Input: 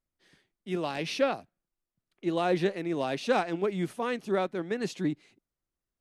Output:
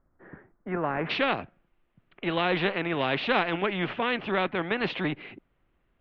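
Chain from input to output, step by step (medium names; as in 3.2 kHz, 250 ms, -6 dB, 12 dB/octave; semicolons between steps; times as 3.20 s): steep low-pass 1.6 kHz 36 dB/octave, from 1.09 s 3 kHz; spectrum-flattening compressor 2:1; trim +4.5 dB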